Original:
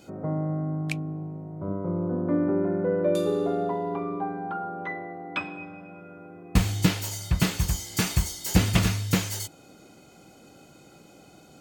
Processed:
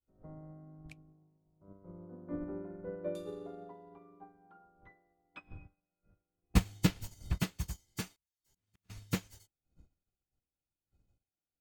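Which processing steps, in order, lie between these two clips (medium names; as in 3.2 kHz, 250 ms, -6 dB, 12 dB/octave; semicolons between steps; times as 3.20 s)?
wind noise 89 Hz -38 dBFS; 8.05–8.90 s: slow attack 759 ms; upward expansion 2.5:1, over -46 dBFS; trim -3.5 dB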